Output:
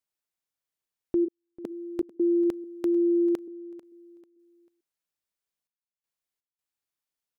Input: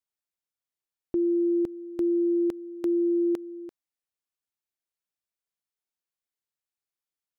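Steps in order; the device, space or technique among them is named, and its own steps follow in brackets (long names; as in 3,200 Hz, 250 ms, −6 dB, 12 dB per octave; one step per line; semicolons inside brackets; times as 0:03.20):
0:01.24–0:01.69: high-pass filter 470 Hz → 160 Hz 24 dB per octave
trance gate with a delay (gate pattern "xxxxxxx..xx." 82 BPM −60 dB; repeating echo 443 ms, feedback 30%, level −18 dB)
level +1.5 dB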